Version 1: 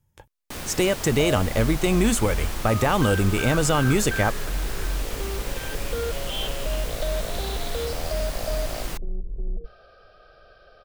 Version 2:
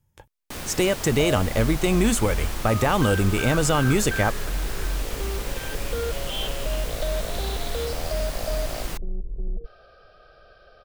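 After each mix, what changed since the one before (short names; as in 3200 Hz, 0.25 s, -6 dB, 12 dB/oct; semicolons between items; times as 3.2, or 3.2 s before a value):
second sound: remove notches 60/120/180 Hz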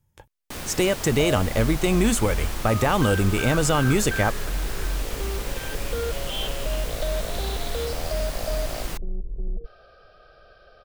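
none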